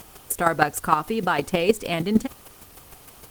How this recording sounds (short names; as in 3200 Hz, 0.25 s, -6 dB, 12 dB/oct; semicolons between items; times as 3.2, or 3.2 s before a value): a quantiser's noise floor 8-bit, dither triangular; chopped level 6.5 Hz, depth 60%, duty 10%; Opus